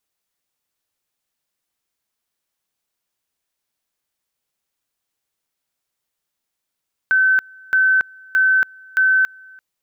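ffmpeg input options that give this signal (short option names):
-f lavfi -i "aevalsrc='pow(10,(-11.5-28*gte(mod(t,0.62),0.28))/20)*sin(2*PI*1530*t)':d=2.48:s=44100"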